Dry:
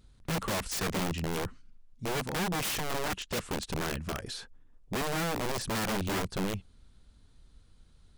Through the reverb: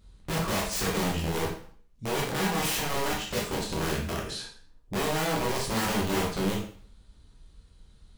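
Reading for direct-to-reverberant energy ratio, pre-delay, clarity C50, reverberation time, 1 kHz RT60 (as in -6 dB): -3.0 dB, 6 ms, 5.0 dB, 0.50 s, 0.50 s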